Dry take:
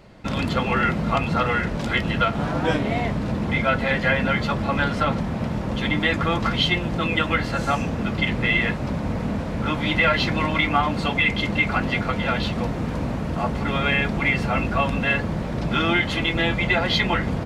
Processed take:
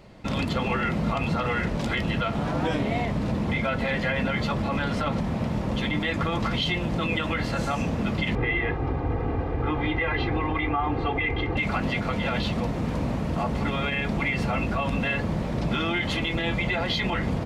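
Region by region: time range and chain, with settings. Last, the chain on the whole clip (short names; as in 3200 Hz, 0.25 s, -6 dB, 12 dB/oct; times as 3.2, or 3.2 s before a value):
8.35–11.57 LPF 1800 Hz + comb 2.5 ms, depth 88%
whole clip: bell 1500 Hz -3.5 dB 0.42 oct; limiter -16 dBFS; gain -1 dB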